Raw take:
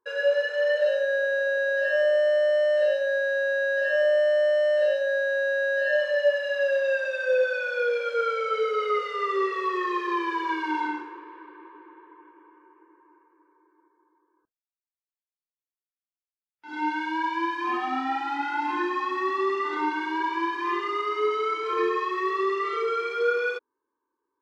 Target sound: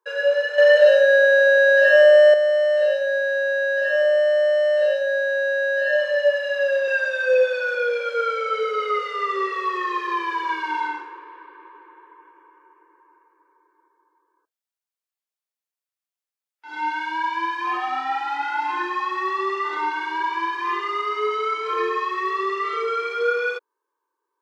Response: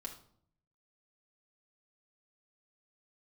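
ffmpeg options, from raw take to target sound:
-filter_complex "[0:a]highpass=f=430:w=0.5412,highpass=f=430:w=1.3066,asettb=1/sr,asplit=3[a][b][c];[a]atrim=end=0.584[d];[b]atrim=start=0.58:end=2.34,asetpts=PTS-STARTPTS,afade=t=in:d=0.004:c=qsin,afade=t=out:st=1.756:d=0.004:c=qsin,acontrast=88[e];[c]atrim=start=2.336[f];[d][e]acrossfade=d=0.004:c1=hsin:c2=qsin[g];[g][f]acrossfade=d=0.004:c1=qsin:c2=hsin,asettb=1/sr,asplit=3[h][i][j];[h]atrim=end=6.874[k];[i]atrim=start=6.87:end=7.75,asetpts=PTS-STARTPTS,afade=t=in:d=0.004:c=qsin,afade=t=out:st=0.876:d=0.004:c=qsin,aecho=1:1:6.3:0.73,atrim=end_sample=38808[l];[j]atrim=start=7.746[m];[k][l]acrossfade=d=0.004:c1=hsin:c2=qsin[n];[n][m]acrossfade=d=0.004:c1=qsin:c2=hsin,volume=3.5dB"

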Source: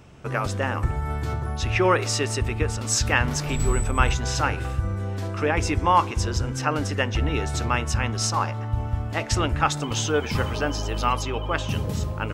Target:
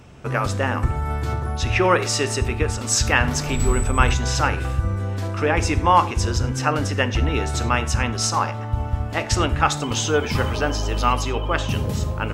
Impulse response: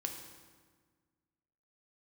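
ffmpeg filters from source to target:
-filter_complex "[0:a]asplit=2[a][b];[1:a]atrim=start_sample=2205,atrim=end_sample=3528,asetrate=32634,aresample=44100[c];[b][c]afir=irnorm=-1:irlink=0,volume=-4dB[d];[a][d]amix=inputs=2:normalize=0,volume=-1dB"

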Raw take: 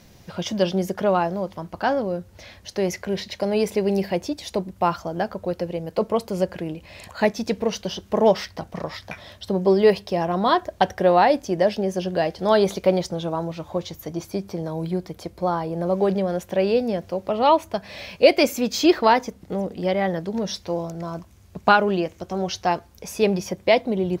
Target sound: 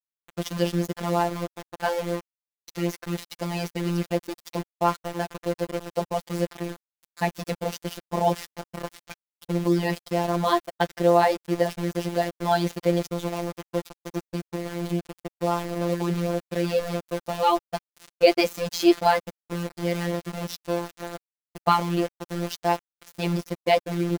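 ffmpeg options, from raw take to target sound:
-af "aeval=exprs='val(0)*gte(abs(val(0)),0.0447)':c=same,afftfilt=real='hypot(re,im)*cos(PI*b)':imag='0':win_size=1024:overlap=0.75"

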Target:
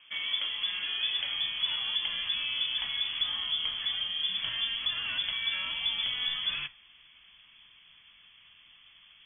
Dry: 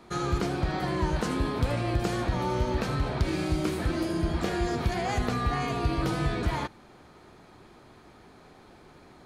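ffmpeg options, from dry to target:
-af "flanger=delay=5.7:depth=4.3:regen=-83:speed=0.85:shape=sinusoidal,lowpass=f=3k:t=q:w=0.5098,lowpass=f=3k:t=q:w=0.6013,lowpass=f=3k:t=q:w=0.9,lowpass=f=3k:t=q:w=2.563,afreqshift=-3500,asubboost=boost=5.5:cutoff=170"

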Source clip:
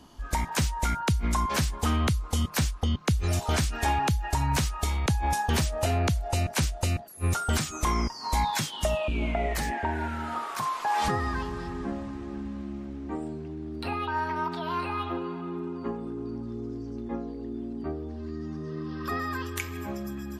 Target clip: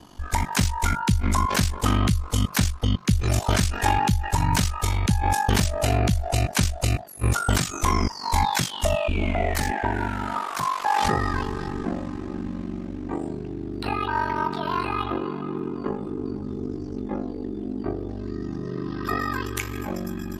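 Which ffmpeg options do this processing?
-af "aeval=exprs='val(0)*sin(2*PI*24*n/s)':c=same,volume=7.5dB"

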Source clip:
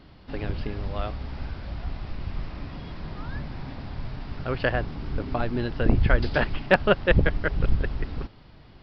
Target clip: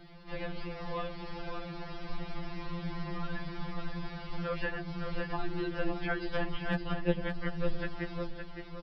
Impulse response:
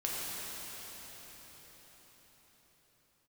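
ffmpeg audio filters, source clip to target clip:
-filter_complex "[0:a]acrossover=split=250|3400[a][b][c];[a]acompressor=threshold=-31dB:ratio=4[d];[b]acompressor=threshold=-33dB:ratio=4[e];[c]acompressor=threshold=-54dB:ratio=4[f];[d][e][f]amix=inputs=3:normalize=0,aecho=1:1:563|1126|1689|2252:0.473|0.161|0.0547|0.0186,afftfilt=real='re*2.83*eq(mod(b,8),0)':imag='im*2.83*eq(mod(b,8),0)':win_size=2048:overlap=0.75,volume=1.5dB"

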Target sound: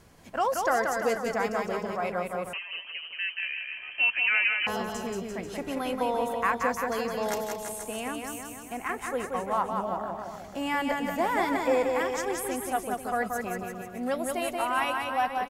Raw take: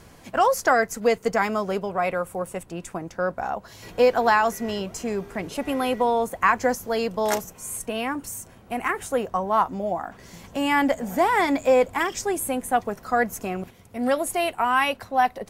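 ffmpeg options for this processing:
-filter_complex "[0:a]aecho=1:1:180|342|487.8|619|737.1:0.631|0.398|0.251|0.158|0.1,asettb=1/sr,asplit=3[a][b][c];[a]atrim=end=2.534[d];[b]atrim=start=2.53:end=4.67,asetpts=PTS-STARTPTS,afade=t=in:d=0.004:c=qsin,afade=t=out:st=2.136:d=0.004:c=qsin,lowpass=f=2.7k:t=q:w=0.5098,lowpass=f=2.7k:t=q:w=0.6013,lowpass=f=2.7k:t=q:w=0.9,lowpass=f=2.7k:t=q:w=2.563,afreqshift=-3200[e];[c]atrim=start=4.666[f];[d][e]acrossfade=d=0.004:c1=hsin:c2=qsin[g];[g][f]acrossfade=d=0.004:c1=qsin:c2=hsin,volume=-7.5dB"

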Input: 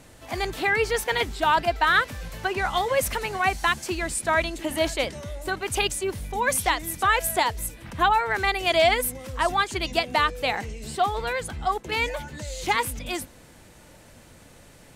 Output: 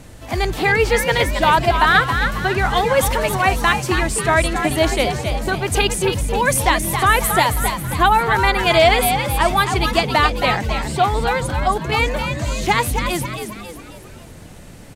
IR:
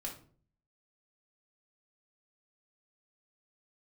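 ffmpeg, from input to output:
-filter_complex "[0:a]lowshelf=f=230:g=8,asplit=2[a][b];[b]asplit=5[c][d][e][f][g];[c]adelay=271,afreqshift=80,volume=-7dB[h];[d]adelay=542,afreqshift=160,volume=-13.7dB[i];[e]adelay=813,afreqshift=240,volume=-20.5dB[j];[f]adelay=1084,afreqshift=320,volume=-27.2dB[k];[g]adelay=1355,afreqshift=400,volume=-34dB[l];[h][i][j][k][l]amix=inputs=5:normalize=0[m];[a][m]amix=inputs=2:normalize=0,volume=5.5dB"

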